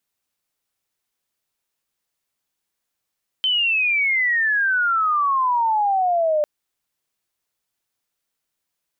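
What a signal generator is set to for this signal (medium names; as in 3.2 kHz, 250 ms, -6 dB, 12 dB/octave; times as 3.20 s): sweep logarithmic 3.1 kHz -> 590 Hz -16.5 dBFS -> -16 dBFS 3.00 s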